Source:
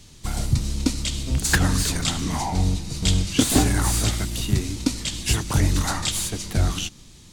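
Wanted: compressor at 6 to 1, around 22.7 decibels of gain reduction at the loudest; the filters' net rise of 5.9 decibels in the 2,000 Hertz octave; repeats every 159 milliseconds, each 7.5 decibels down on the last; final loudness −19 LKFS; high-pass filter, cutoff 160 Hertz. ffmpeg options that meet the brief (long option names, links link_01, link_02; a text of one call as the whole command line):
ffmpeg -i in.wav -af "highpass=160,equalizer=frequency=2000:width_type=o:gain=7.5,acompressor=threshold=-38dB:ratio=6,aecho=1:1:159|318|477|636|795:0.422|0.177|0.0744|0.0312|0.0131,volume=19dB" out.wav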